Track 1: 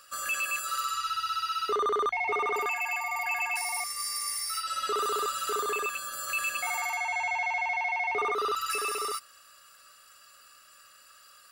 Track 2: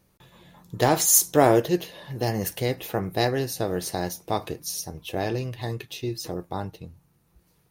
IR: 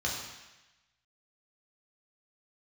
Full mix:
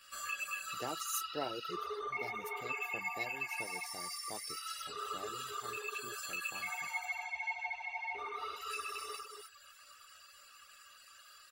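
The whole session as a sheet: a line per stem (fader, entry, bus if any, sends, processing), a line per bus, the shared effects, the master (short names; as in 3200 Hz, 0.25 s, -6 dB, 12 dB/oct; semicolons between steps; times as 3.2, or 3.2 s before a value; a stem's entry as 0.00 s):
-0.5 dB, 0.00 s, send -5 dB, echo send -5.5 dB, bell 150 Hz -12.5 dB 1.3 oct; compressor 6:1, threshold -37 dBFS, peak gain reduction 10.5 dB; ensemble effect
-19.5 dB, 0.00 s, no send, no echo send, HPF 140 Hz; harmonic-percussive split harmonic -5 dB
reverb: on, RT60 1.0 s, pre-delay 3 ms
echo: echo 0.282 s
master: reverb removal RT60 0.73 s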